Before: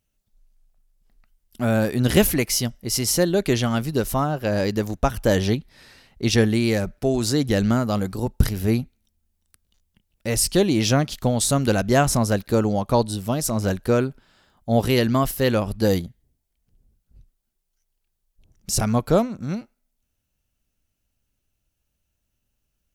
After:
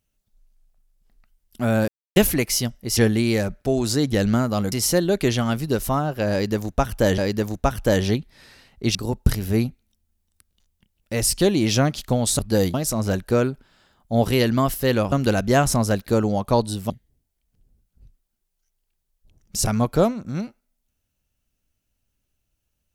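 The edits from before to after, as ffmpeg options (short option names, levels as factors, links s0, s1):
-filter_complex "[0:a]asplit=11[s0][s1][s2][s3][s4][s5][s6][s7][s8][s9][s10];[s0]atrim=end=1.88,asetpts=PTS-STARTPTS,afade=t=out:st=1.876:d=0.004:c=hsin[s11];[s1]atrim=start=1.88:end=2.16,asetpts=PTS-STARTPTS,volume=0[s12];[s2]atrim=start=2.16:end=2.972,asetpts=PTS-STARTPTS,afade=t=in:d=0.004:c=hsin[s13];[s3]atrim=start=6.338:end=8.092[s14];[s4]atrim=start=2.968:end=5.432[s15];[s5]atrim=start=4.568:end=6.342[s16];[s6]atrim=start=8.088:end=11.532[s17];[s7]atrim=start=15.688:end=16.042[s18];[s8]atrim=start=13.308:end=15.692[s19];[s9]atrim=start=11.528:end=13.312[s20];[s10]atrim=start=16.038[s21];[s11][s12][s13]concat=n=3:v=0:a=1[s22];[s22][s14]acrossfade=d=0.004:c1=hsin:c2=hsin[s23];[s23][s15]acrossfade=d=0.004:c1=hsin:c2=hsin[s24];[s24][s16]acrossfade=d=0.004:c1=hsin:c2=hsin[s25];[s25][s17]acrossfade=d=0.004:c1=hsin:c2=hsin[s26];[s26][s18]acrossfade=d=0.004:c1=hsin:c2=hsin[s27];[s27][s19]acrossfade=d=0.004:c1=hsin:c2=hsin[s28];[s28][s20]acrossfade=d=0.004:c1=hsin:c2=hsin[s29];[s29][s21]acrossfade=d=0.004:c1=hsin:c2=hsin"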